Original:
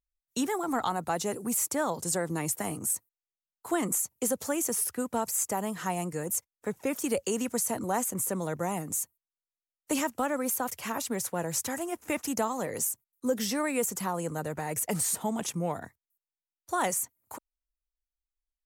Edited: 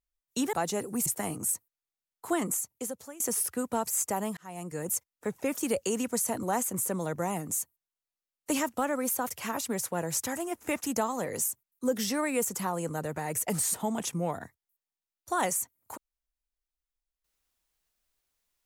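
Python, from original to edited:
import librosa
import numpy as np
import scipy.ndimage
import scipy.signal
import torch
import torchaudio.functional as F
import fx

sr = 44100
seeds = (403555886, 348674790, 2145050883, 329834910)

y = fx.edit(x, sr, fx.cut(start_s=0.53, length_s=0.52),
    fx.cut(start_s=1.58, length_s=0.89),
    fx.fade_out_to(start_s=3.75, length_s=0.86, floor_db=-20.5),
    fx.fade_in_span(start_s=5.78, length_s=0.5), tone=tone)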